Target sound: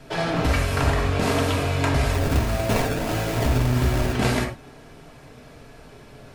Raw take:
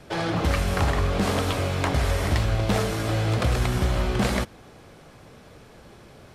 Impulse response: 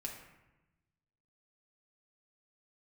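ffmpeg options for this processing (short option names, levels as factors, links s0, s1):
-filter_complex "[0:a]asettb=1/sr,asplit=3[s0][s1][s2];[s0]atrim=end=2.134[s3];[s1]atrim=start=2.13:end=4.13,asetpts=PTS-STARTPTS,afade=t=in:d=0.004:c=qsin,afade=t=out:st=1.996:d=0.004:c=qsin,acrusher=samples=25:mix=1:aa=0.000001:lfo=1:lforange=40:lforate=1.6[s4];[s2]atrim=start=4.126[s5];[s3][s4]acrossfade=d=0.004:c1=hsin:c2=qsin[s6];[s6][s5]acrossfade=d=0.004:c1=qsin:c2=hsin[s7];[1:a]atrim=start_sample=2205,afade=t=out:st=0.16:d=0.01,atrim=end_sample=7497[s8];[s7][s8]afir=irnorm=-1:irlink=0,volume=1.68"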